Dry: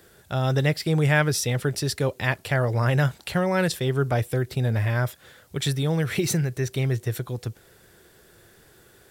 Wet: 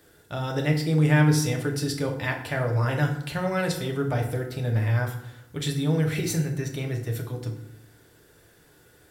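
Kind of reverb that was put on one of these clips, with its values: FDN reverb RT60 0.78 s, low-frequency decay 1.35×, high-frequency decay 0.65×, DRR 1.5 dB; trim -5 dB

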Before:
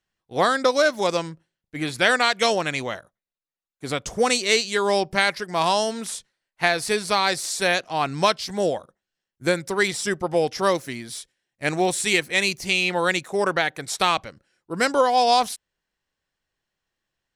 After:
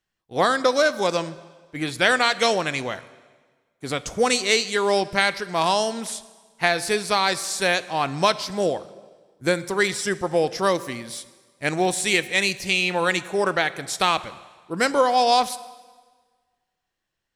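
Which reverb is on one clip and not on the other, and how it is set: plate-style reverb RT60 1.5 s, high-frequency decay 0.9×, DRR 15 dB

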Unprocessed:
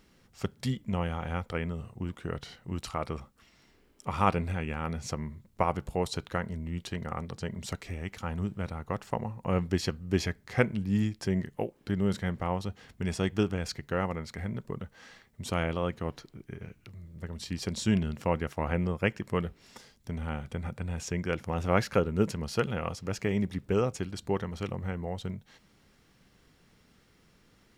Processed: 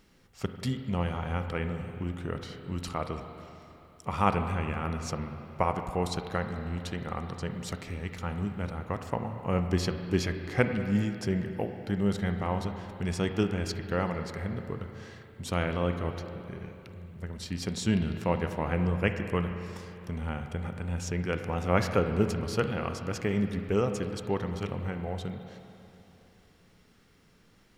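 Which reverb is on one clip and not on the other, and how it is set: spring tank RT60 3 s, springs 34/45/49 ms, chirp 30 ms, DRR 6.5 dB

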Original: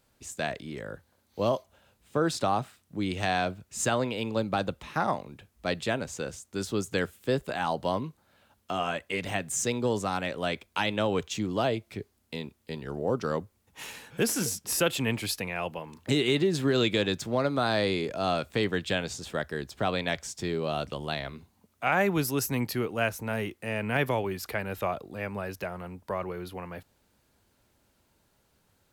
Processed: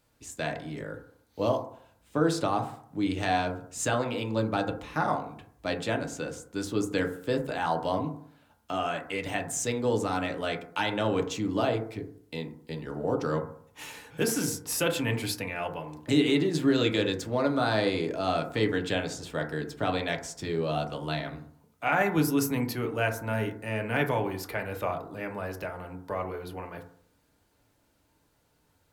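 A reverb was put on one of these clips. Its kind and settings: FDN reverb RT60 0.6 s, low-frequency decay 1×, high-frequency decay 0.25×, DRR 3 dB; trim -2 dB

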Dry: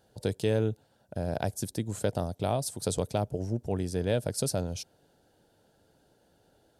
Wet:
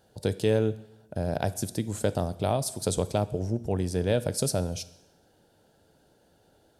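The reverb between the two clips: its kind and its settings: plate-style reverb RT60 0.88 s, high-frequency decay 1×, DRR 14.5 dB; trim +2.5 dB

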